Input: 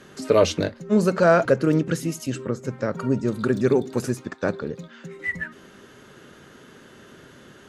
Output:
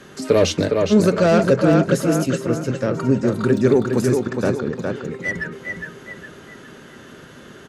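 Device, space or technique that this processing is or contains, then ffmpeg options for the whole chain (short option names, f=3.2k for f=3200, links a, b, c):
one-band saturation: -filter_complex "[0:a]asplit=2[a][b];[b]adelay=411,lowpass=f=4.5k:p=1,volume=-5dB,asplit=2[c][d];[d]adelay=411,lowpass=f=4.5k:p=1,volume=0.41,asplit=2[e][f];[f]adelay=411,lowpass=f=4.5k:p=1,volume=0.41,asplit=2[g][h];[h]adelay=411,lowpass=f=4.5k:p=1,volume=0.41,asplit=2[i][j];[j]adelay=411,lowpass=f=4.5k:p=1,volume=0.41[k];[a][c][e][g][i][k]amix=inputs=6:normalize=0,acrossover=split=500|3100[l][m][n];[m]asoftclip=type=tanh:threshold=-23.5dB[o];[l][o][n]amix=inputs=3:normalize=0,volume=4.5dB"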